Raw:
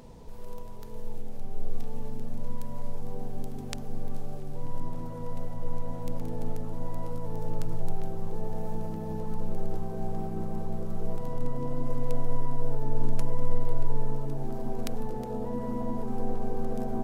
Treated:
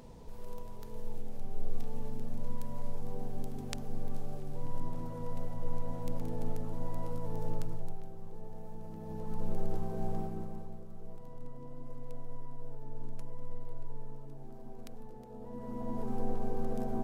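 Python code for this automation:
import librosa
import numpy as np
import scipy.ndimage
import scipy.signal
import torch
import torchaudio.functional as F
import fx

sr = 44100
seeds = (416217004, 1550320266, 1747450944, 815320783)

y = fx.gain(x, sr, db=fx.line((7.51, -3.0), (8.06, -12.5), (8.77, -12.5), (9.49, -2.5), (10.16, -2.5), (10.86, -15.0), (15.3, -15.0), (16.04, -3.5)))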